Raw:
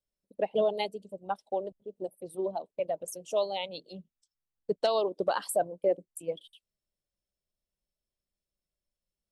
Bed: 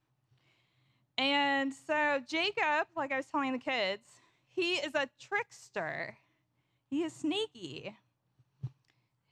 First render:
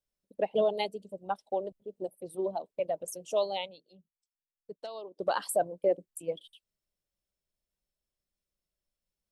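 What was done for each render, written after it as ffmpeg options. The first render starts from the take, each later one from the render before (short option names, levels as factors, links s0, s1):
-filter_complex "[0:a]asplit=3[s0][s1][s2];[s0]atrim=end=3.76,asetpts=PTS-STARTPTS,afade=t=out:st=3.59:d=0.17:silence=0.188365[s3];[s1]atrim=start=3.76:end=5.14,asetpts=PTS-STARTPTS,volume=0.188[s4];[s2]atrim=start=5.14,asetpts=PTS-STARTPTS,afade=t=in:d=0.17:silence=0.188365[s5];[s3][s4][s5]concat=n=3:v=0:a=1"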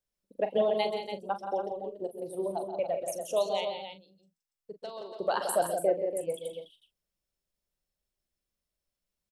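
-filter_complex "[0:a]asplit=2[s0][s1];[s1]adelay=41,volume=0.282[s2];[s0][s2]amix=inputs=2:normalize=0,asplit=2[s3][s4];[s4]aecho=0:1:131.2|172|285.7:0.282|0.398|0.355[s5];[s3][s5]amix=inputs=2:normalize=0"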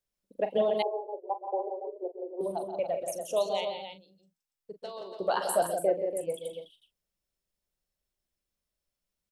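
-filter_complex "[0:a]asettb=1/sr,asplit=3[s0][s1][s2];[s0]atrim=end=0.824[s3];[s1]atrim=start=0.82:end=2.41,asetpts=PTS-STARTPTS,afade=t=in:d=0.004:c=qsin,afade=t=out:st=1.586:d=0.004:c=qsin,asuperpass=centerf=580:order=20:qfactor=0.79[s4];[s2]atrim=start=2.406[s5];[s3][s4]acrossfade=d=0.004:c1=hsin:c2=qsin[s6];[s6][s5]acrossfade=d=0.004:c1=qsin:c2=hsin,asettb=1/sr,asplit=3[s7][s8][s9];[s7]atrim=end=4.804[s10];[s8]atrim=start=4.8:end=5.63,asetpts=PTS-STARTPTS,afade=t=in:d=0.004:c=qsin,afade=t=out:st=0.826:d=0.004:c=qsin,asplit=2[s11][s12];[s12]adelay=16,volume=0.422[s13];[s11][s13]amix=inputs=2:normalize=0,atrim=end_sample=36603[s14];[s9]atrim=start=5.626[s15];[s10][s14]acrossfade=d=0.004:c1=hsin:c2=qsin[s16];[s16][s15]acrossfade=d=0.004:c1=qsin:c2=hsin"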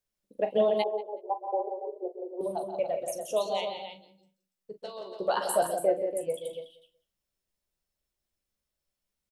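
-filter_complex "[0:a]asplit=2[s0][s1];[s1]adelay=14,volume=0.355[s2];[s0][s2]amix=inputs=2:normalize=0,asplit=2[s3][s4];[s4]adelay=187,lowpass=f=4100:p=1,volume=0.1,asplit=2[s5][s6];[s6]adelay=187,lowpass=f=4100:p=1,volume=0.2[s7];[s3][s5][s7]amix=inputs=3:normalize=0"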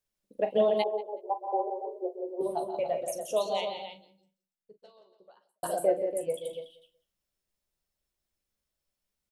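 -filter_complex "[0:a]asettb=1/sr,asplit=3[s0][s1][s2];[s0]atrim=end=1.504[s3];[s1]atrim=start=1.5:end=3.01,asetpts=PTS-STARTPTS,afade=t=in:d=0.004:c=qsin,afade=t=out:st=1.506:d=0.004:c=qsin,asplit=2[s4][s5];[s5]adelay=13,volume=0.668[s6];[s4][s6]amix=inputs=2:normalize=0,atrim=end_sample=66591[s7];[s2]atrim=start=3.006[s8];[s3][s7]acrossfade=d=0.004:c1=hsin:c2=qsin[s9];[s9][s8]acrossfade=d=0.004:c1=qsin:c2=hsin,asplit=2[s10][s11];[s10]atrim=end=5.63,asetpts=PTS-STARTPTS,afade=t=out:st=3.82:d=1.81:c=qua[s12];[s11]atrim=start=5.63,asetpts=PTS-STARTPTS,afade=t=in:d=0.004:c=hsin[s13];[s12][s13]concat=n=2:v=0:a=1"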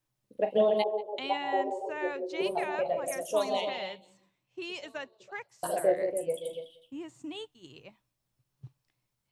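-filter_complex "[1:a]volume=0.422[s0];[0:a][s0]amix=inputs=2:normalize=0"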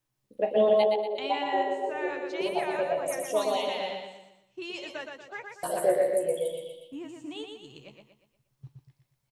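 -filter_complex "[0:a]asplit=2[s0][s1];[s1]adelay=14,volume=0.282[s2];[s0][s2]amix=inputs=2:normalize=0,aecho=1:1:119|238|357|476|595:0.596|0.25|0.105|0.0441|0.0185"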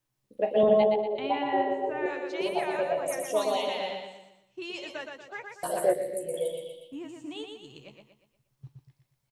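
-filter_complex "[0:a]asettb=1/sr,asplit=3[s0][s1][s2];[s0]atrim=end=0.634[s3];[s1]atrim=start=0.63:end=2.06,asetpts=PTS-STARTPTS,afade=t=in:d=0.004:c=qsin,afade=t=out:st=1.426:d=0.004:c=qsin,bass=f=250:g=12,treble=f=4000:g=-15[s4];[s2]atrim=start=2.056[s5];[s3][s4]acrossfade=d=0.004:c1=hsin:c2=qsin[s6];[s6][s5]acrossfade=d=0.004:c1=qsin:c2=hsin,asettb=1/sr,asplit=3[s7][s8][s9];[s7]atrim=end=5.934[s10];[s8]atrim=start=5.93:end=6.34,asetpts=PTS-STARTPTS,afade=t=in:d=0.004:c=qsin,afade=t=out:st=0.406:d=0.004:c=qsin,equalizer=f=1100:t=o:w=2.3:g=-13.5[s11];[s9]atrim=start=6.336[s12];[s10][s11]acrossfade=d=0.004:c1=hsin:c2=qsin[s13];[s13][s12]acrossfade=d=0.004:c1=qsin:c2=hsin"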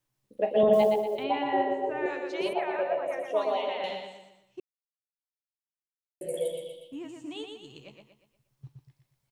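-filter_complex "[0:a]asettb=1/sr,asplit=3[s0][s1][s2];[s0]atrim=end=0.734[s3];[s1]atrim=start=0.73:end=1.24,asetpts=PTS-STARTPTS,afade=t=in:d=0.004:c=qsin,afade=t=out:st=0.506:d=0.004:c=qsin,acrusher=bits=8:mode=log:mix=0:aa=0.000001[s4];[s2]atrim=start=1.236[s5];[s3][s4]acrossfade=d=0.004:c1=hsin:c2=qsin[s6];[s6][s5]acrossfade=d=0.004:c1=qsin:c2=hsin,asettb=1/sr,asplit=3[s7][s8][s9];[s7]atrim=end=2.534[s10];[s8]atrim=start=2.53:end=3.84,asetpts=PTS-STARTPTS,afade=t=in:d=0.004:c=qsin,afade=t=out:st=1.306:d=0.004:c=qsin,acrossover=split=280 3200:gain=0.224 1 0.0631[s11][s12][s13];[s11][s12][s13]amix=inputs=3:normalize=0[s14];[s9]atrim=start=3.836[s15];[s10][s14]acrossfade=d=0.004:c1=hsin:c2=qsin[s16];[s16][s15]acrossfade=d=0.004:c1=qsin:c2=hsin,asplit=3[s17][s18][s19];[s17]atrim=end=4.6,asetpts=PTS-STARTPTS,afade=t=out:st=4.596:d=0.004:c=hsin[s20];[s18]atrim=start=4.6:end=6.21,asetpts=PTS-STARTPTS,volume=0[s21];[s19]atrim=start=6.21,asetpts=PTS-STARTPTS,afade=t=in:d=0.004:c=hsin[s22];[s20][s21][s22]concat=n=3:v=0:a=1"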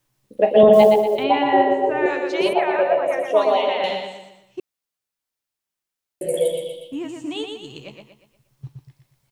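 -af "volume=3.35,alimiter=limit=0.794:level=0:latency=1"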